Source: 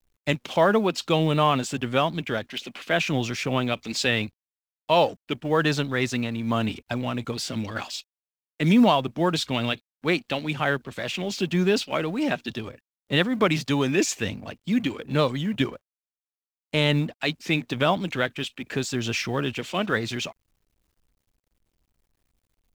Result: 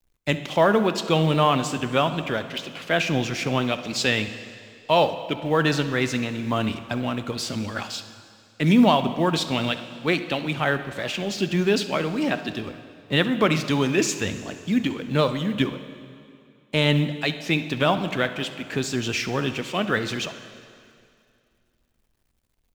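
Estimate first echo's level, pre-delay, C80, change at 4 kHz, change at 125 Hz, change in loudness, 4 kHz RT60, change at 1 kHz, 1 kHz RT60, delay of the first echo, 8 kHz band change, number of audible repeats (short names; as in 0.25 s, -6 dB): -18.5 dB, 6 ms, 12.0 dB, +1.5 dB, +1.5 dB, +1.5 dB, 2.3 s, +1.5 dB, 2.4 s, 68 ms, +1.5 dB, 1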